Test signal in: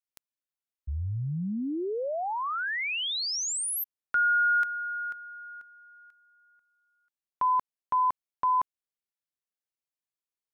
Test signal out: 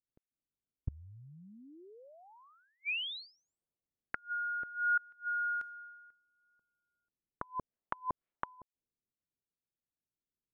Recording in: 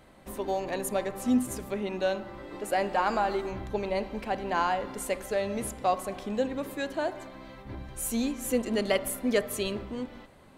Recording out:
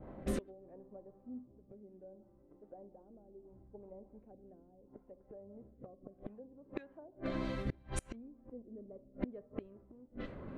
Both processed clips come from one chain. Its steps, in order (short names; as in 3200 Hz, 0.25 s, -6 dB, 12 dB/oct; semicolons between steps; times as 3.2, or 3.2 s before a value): treble ducked by the level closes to 560 Hz, closed at -25.5 dBFS; rotary speaker horn 0.7 Hz; flipped gate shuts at -34 dBFS, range -30 dB; low-pass opened by the level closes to 330 Hz, open at -45 dBFS; gain +10 dB